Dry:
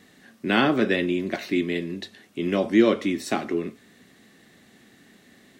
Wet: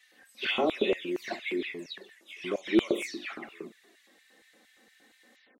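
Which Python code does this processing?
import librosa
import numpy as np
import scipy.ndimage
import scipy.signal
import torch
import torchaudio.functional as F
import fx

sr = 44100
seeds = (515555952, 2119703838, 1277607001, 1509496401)

y = fx.spec_delay(x, sr, highs='early', ms=238)
y = fx.env_flanger(y, sr, rest_ms=4.1, full_db=-18.5)
y = fx.hum_notches(y, sr, base_hz=50, count=7)
y = fx.filter_lfo_highpass(y, sr, shape='square', hz=4.3, low_hz=390.0, high_hz=2100.0, q=1.3)
y = F.gain(torch.from_numpy(y), -2.0).numpy()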